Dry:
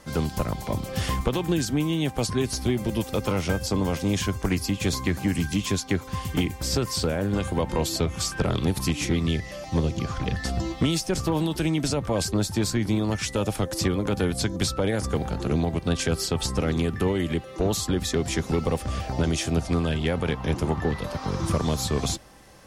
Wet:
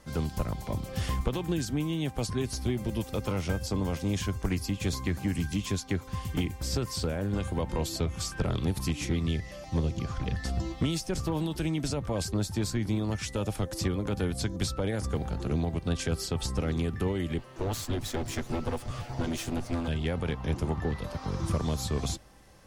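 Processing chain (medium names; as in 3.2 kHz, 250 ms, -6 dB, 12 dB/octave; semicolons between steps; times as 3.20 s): 17.38–19.88 s: comb filter that takes the minimum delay 8.3 ms; bass shelf 110 Hz +7 dB; trim -7 dB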